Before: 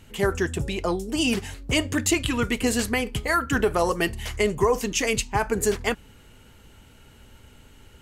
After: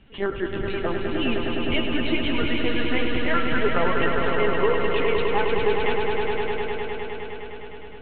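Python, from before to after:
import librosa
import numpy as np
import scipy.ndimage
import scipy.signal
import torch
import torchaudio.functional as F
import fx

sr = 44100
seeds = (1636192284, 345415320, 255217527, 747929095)

y = fx.lpc_vocoder(x, sr, seeds[0], excitation='pitch_kept', order=16)
y = fx.echo_swell(y, sr, ms=103, loudest=5, wet_db=-6.5)
y = y * librosa.db_to_amplitude(-3.0)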